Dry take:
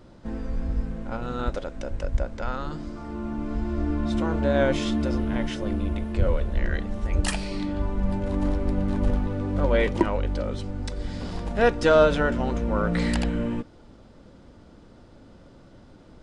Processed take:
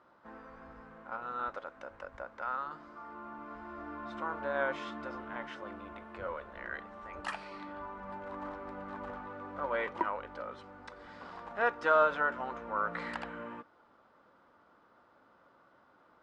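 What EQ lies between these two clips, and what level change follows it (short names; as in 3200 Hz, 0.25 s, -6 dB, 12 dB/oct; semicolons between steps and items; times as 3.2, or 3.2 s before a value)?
band-pass 1200 Hz, Q 2.2; 0.0 dB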